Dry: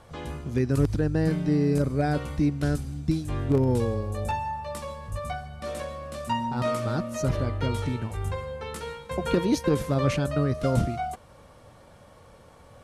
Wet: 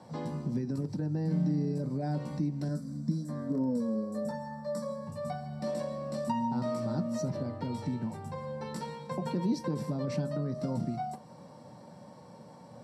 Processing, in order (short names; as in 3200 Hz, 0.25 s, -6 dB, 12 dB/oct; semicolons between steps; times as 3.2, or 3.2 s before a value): 2.68–5.07 fixed phaser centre 550 Hz, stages 8; limiter -19 dBFS, peak gain reduction 8.5 dB; compressor 2.5:1, threshold -35 dBFS, peak gain reduction 8.5 dB; HPF 110 Hz 24 dB/oct; reverb RT60 0.20 s, pre-delay 3 ms, DRR 5.5 dB; gain -8 dB